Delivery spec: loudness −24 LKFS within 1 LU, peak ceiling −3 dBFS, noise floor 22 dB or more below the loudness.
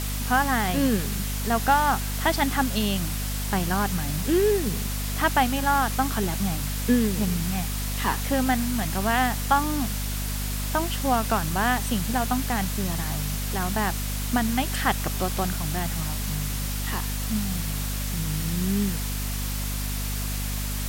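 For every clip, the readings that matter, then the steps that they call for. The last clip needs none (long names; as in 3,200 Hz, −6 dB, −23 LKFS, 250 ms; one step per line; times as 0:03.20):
mains hum 50 Hz; hum harmonics up to 250 Hz; level of the hum −27 dBFS; background noise floor −29 dBFS; target noise floor −48 dBFS; integrated loudness −25.5 LKFS; sample peak −7.5 dBFS; target loudness −24.0 LKFS
→ mains-hum notches 50/100/150/200/250 Hz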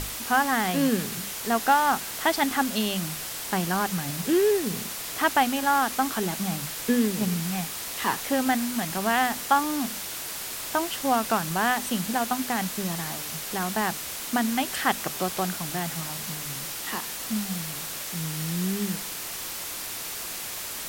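mains hum none found; background noise floor −35 dBFS; target noise floor −49 dBFS
→ broadband denoise 14 dB, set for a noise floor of −35 dBFS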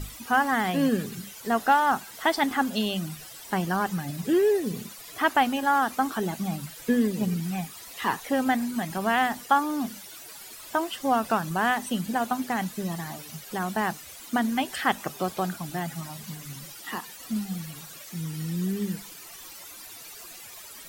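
background noise floor −44 dBFS; target noise floor −49 dBFS
→ broadband denoise 6 dB, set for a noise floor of −44 dBFS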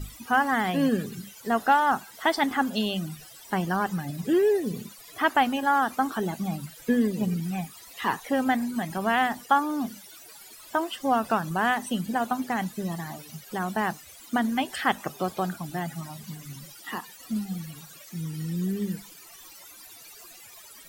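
background noise floor −48 dBFS; target noise floor −49 dBFS
→ broadband denoise 6 dB, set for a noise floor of −48 dBFS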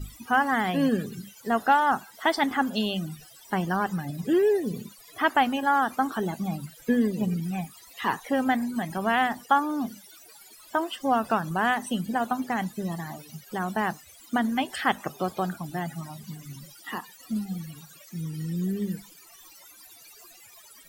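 background noise floor −51 dBFS; integrated loudness −27.0 LKFS; sample peak −8.0 dBFS; target loudness −24.0 LKFS
→ level +3 dB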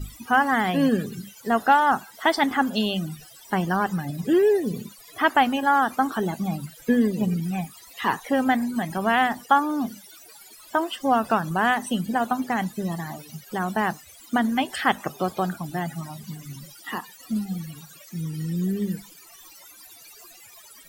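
integrated loudness −24.0 LKFS; sample peak −5.0 dBFS; background noise floor −48 dBFS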